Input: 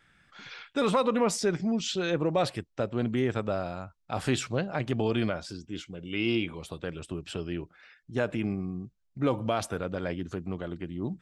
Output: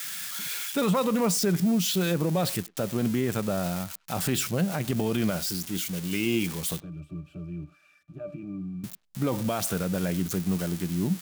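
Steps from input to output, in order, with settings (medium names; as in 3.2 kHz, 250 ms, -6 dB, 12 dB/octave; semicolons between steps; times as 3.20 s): zero-crossing glitches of -25.5 dBFS; peaking EQ 180 Hz +10 dB 0.51 oct; peak limiter -18.5 dBFS, peak gain reduction 5 dB; 6.80–8.84 s: pitch-class resonator D, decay 0.13 s; speakerphone echo 100 ms, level -23 dB; trim +1.5 dB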